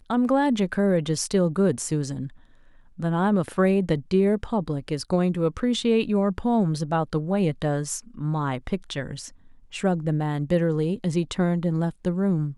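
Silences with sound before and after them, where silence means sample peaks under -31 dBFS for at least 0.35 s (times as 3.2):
2.27–2.99
9.28–9.74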